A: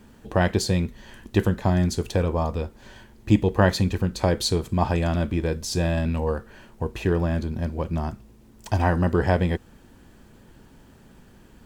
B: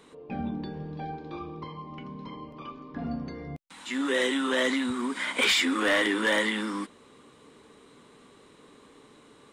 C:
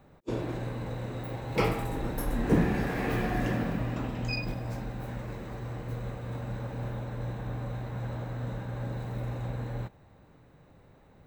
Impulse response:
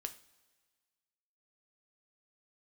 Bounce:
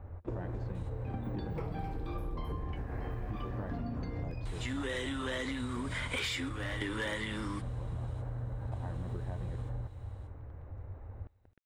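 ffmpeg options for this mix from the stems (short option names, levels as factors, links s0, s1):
-filter_complex "[0:a]lowshelf=f=82:g=8.5,aeval=exprs='val(0)*gte(abs(val(0)),0.0158)':c=same,volume=0.237,asplit=2[s0][s1];[1:a]adelay=750,volume=0.531,asplit=2[s2][s3];[s3]volume=0.562[s4];[2:a]lowshelf=f=120:t=q:w=3:g=10,acompressor=threshold=0.0316:ratio=3,volume=1.41,asplit=3[s5][s6][s7];[s6]volume=0.15[s8];[s7]volume=0.075[s9];[s1]apad=whole_len=452950[s10];[s2][s10]sidechaingate=range=0.0224:threshold=0.00316:ratio=16:detection=peak[s11];[s0][s5]amix=inputs=2:normalize=0,lowpass=1600,acompressor=threshold=0.0141:ratio=3,volume=1[s12];[3:a]atrim=start_sample=2205[s13];[s4][s8]amix=inputs=2:normalize=0[s14];[s14][s13]afir=irnorm=-1:irlink=0[s15];[s9]aecho=0:1:263:1[s16];[s11][s12][s15][s16]amix=inputs=4:normalize=0,acompressor=threshold=0.0224:ratio=6"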